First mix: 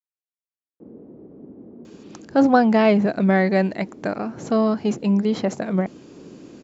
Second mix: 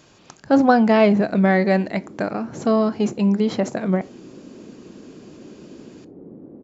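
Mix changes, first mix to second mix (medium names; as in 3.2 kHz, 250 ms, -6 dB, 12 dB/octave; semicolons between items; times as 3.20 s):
speech: entry -1.85 s; reverb: on, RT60 0.30 s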